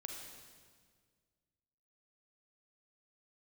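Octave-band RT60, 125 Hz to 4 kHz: 2.3, 2.1, 1.9, 1.6, 1.6, 1.5 s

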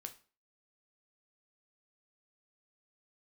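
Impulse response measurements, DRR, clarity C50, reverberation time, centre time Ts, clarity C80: 6.0 dB, 15.0 dB, 0.40 s, 7 ms, 20.0 dB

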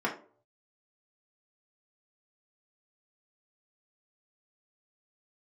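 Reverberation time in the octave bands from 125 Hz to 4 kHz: 0.90, 0.45, 0.55, 0.40, 0.30, 0.25 s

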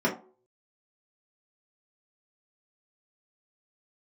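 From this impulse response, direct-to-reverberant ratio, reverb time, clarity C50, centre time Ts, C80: -6.0 dB, not exponential, 10.0 dB, 18 ms, 15.5 dB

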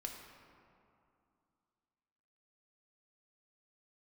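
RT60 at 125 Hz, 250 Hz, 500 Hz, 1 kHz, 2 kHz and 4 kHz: 2.7, 3.0, 2.5, 2.7, 1.9, 1.3 s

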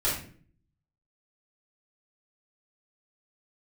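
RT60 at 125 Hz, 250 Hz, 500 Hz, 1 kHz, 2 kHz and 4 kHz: 0.85, 0.70, 0.60, 0.40, 0.45, 0.35 s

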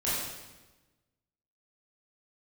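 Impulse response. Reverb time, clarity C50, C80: 1.2 s, -1.5 dB, 1.5 dB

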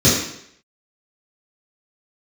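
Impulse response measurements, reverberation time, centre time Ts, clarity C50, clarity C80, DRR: 0.70 s, 52 ms, 2.0 dB, 5.5 dB, -10.5 dB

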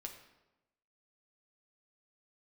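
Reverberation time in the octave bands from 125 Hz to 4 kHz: 1.1, 1.1, 1.1, 0.95, 0.85, 0.70 s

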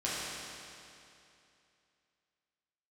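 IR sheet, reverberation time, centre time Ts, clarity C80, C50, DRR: 2.7 s, 0.176 s, -1.5 dB, -3.5 dB, -9.0 dB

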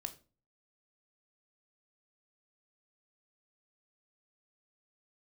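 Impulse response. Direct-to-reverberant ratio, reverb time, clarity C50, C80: 7.5 dB, 0.35 s, 15.5 dB, 20.0 dB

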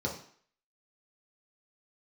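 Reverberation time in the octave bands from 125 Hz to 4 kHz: 0.45, 0.50, 0.50, 0.55, 0.55, 0.55 s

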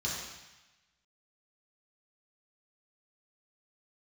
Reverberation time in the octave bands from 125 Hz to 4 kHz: 1.2, 1.0, 0.95, 1.1, 1.2, 1.2 s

